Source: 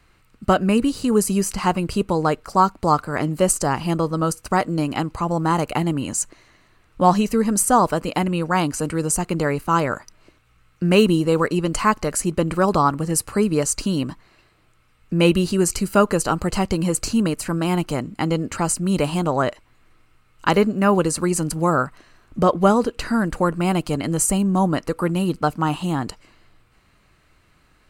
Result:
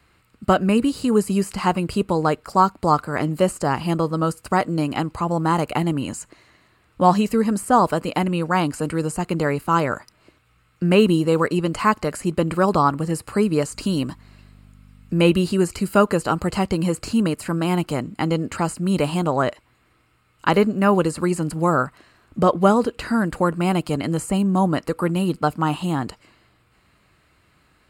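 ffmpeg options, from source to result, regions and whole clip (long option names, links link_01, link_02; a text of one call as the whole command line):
ffmpeg -i in.wav -filter_complex "[0:a]asettb=1/sr,asplit=3[link_01][link_02][link_03];[link_01]atrim=end=13.734[link_04];[link_02]atrim=start=13.73:end=15.3,asetpts=PTS-STARTPTS,afade=type=in:duration=0.004:curve=qsin,afade=type=out:start_time=1.566:duration=0.004:curve=qsin,bass=frequency=250:gain=0,treble=frequency=4000:gain=4,aeval=exprs='val(0)+0.00631*(sin(2*PI*50*n/s)+sin(2*PI*2*50*n/s)/2+sin(2*PI*3*50*n/s)/3+sin(2*PI*4*50*n/s)/4+sin(2*PI*5*50*n/s)/5)':channel_layout=same[link_05];[link_03]atrim=start=15.296[link_06];[link_04][link_05]acrossfade=duration=0.004:curve1=hsin:curve2=qsin[link_07];[link_07][link_06]acrossfade=duration=0.004:curve1=qsin:curve2=hsin,highpass=55,acrossover=split=3100[link_08][link_09];[link_09]acompressor=threshold=-31dB:ratio=4:attack=1:release=60[link_10];[link_08][link_10]amix=inputs=2:normalize=0,bandreject=frequency=6000:width=7.8" out.wav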